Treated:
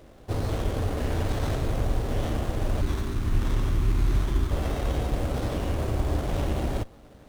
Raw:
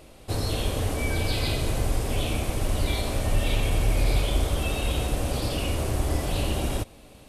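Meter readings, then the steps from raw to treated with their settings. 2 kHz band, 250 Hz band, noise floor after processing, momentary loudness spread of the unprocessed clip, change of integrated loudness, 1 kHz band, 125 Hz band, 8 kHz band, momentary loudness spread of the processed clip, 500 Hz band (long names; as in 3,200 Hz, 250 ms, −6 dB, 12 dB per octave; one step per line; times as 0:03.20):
−5.5 dB, 0.0 dB, −51 dBFS, 3 LU, −1.0 dB, −1.0 dB, 0.0 dB, −9.5 dB, 3 LU, −1.5 dB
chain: time-frequency box erased 0:02.82–0:04.51, 430–1,000 Hz
windowed peak hold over 17 samples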